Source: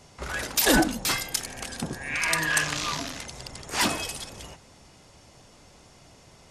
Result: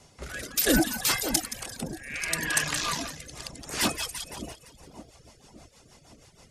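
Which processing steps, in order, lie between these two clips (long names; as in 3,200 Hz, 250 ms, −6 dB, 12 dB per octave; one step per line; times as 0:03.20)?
high-shelf EQ 8,100 Hz +7 dB
echo with a time of its own for lows and highs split 840 Hz, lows 568 ms, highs 172 ms, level −9 dB
rotating-speaker cabinet horn 0.6 Hz, later 6.3 Hz, at 0:02.95
reverb reduction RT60 0.7 s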